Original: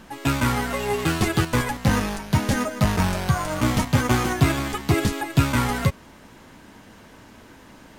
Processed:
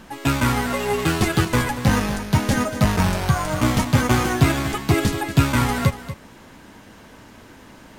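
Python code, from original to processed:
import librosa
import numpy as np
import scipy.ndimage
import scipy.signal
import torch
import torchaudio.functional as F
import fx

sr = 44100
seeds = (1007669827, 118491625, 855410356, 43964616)

y = x + 10.0 ** (-13.0 / 20.0) * np.pad(x, (int(237 * sr / 1000.0), 0))[:len(x)]
y = F.gain(torch.from_numpy(y), 2.0).numpy()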